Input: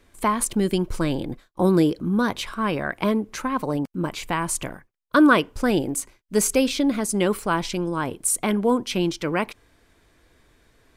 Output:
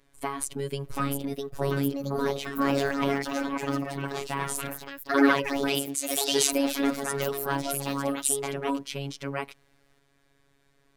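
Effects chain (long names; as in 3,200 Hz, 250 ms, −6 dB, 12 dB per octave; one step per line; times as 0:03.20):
delay with pitch and tempo change per echo 771 ms, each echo +3 semitones, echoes 3
0:02.59–0:03.31: leveller curve on the samples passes 1
0:05.68–0:06.53: meter weighting curve D
phases set to zero 139 Hz
0:07.85–0:08.34: high-shelf EQ 8,200 Hz +7.5 dB
level −5.5 dB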